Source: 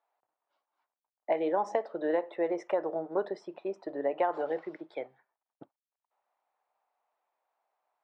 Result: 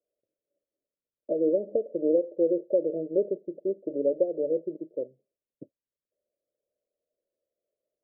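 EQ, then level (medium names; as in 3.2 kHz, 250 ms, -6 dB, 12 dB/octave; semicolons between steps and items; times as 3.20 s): steep low-pass 590 Hz 96 dB/octave; +6.5 dB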